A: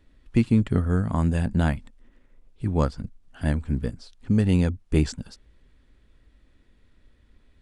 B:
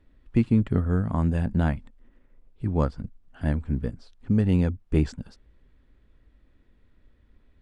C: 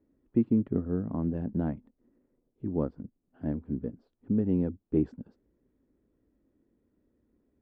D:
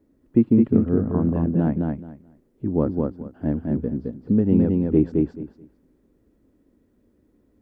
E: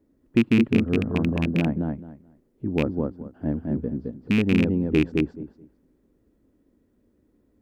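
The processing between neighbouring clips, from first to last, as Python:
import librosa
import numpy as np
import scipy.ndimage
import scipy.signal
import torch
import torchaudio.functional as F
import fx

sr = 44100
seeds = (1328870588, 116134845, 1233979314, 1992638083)

y1 = fx.high_shelf(x, sr, hz=3500.0, db=-12.0)
y1 = y1 * librosa.db_to_amplitude(-1.0)
y2 = fx.bandpass_q(y1, sr, hz=320.0, q=1.4)
y3 = fx.echo_feedback(y2, sr, ms=215, feedback_pct=19, wet_db=-3)
y3 = y3 * librosa.db_to_amplitude(8.0)
y4 = fx.rattle_buzz(y3, sr, strikes_db=-16.0, level_db=-13.0)
y4 = y4 * librosa.db_to_amplitude(-2.5)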